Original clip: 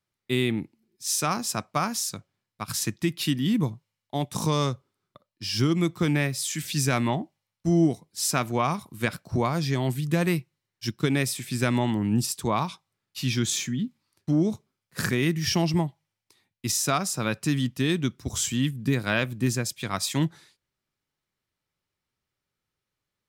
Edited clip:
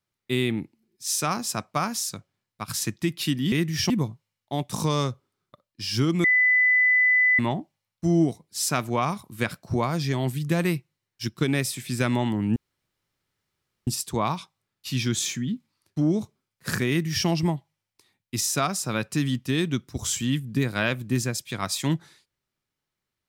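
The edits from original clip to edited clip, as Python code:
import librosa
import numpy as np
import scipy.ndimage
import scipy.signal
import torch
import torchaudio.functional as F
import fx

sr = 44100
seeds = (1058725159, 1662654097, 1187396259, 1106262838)

y = fx.edit(x, sr, fx.bleep(start_s=5.86, length_s=1.15, hz=2000.0, db=-16.0),
    fx.insert_room_tone(at_s=12.18, length_s=1.31),
    fx.duplicate(start_s=15.2, length_s=0.38, to_s=3.52), tone=tone)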